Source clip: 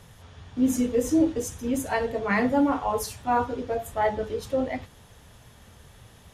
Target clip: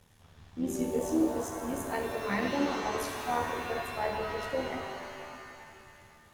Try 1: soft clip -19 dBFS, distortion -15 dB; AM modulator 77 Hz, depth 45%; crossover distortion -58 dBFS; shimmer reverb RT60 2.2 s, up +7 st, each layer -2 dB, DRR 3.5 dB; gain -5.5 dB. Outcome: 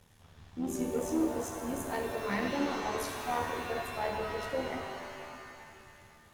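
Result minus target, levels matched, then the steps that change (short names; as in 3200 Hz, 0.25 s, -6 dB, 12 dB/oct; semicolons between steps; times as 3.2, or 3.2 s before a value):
soft clip: distortion +12 dB
change: soft clip -11 dBFS, distortion -27 dB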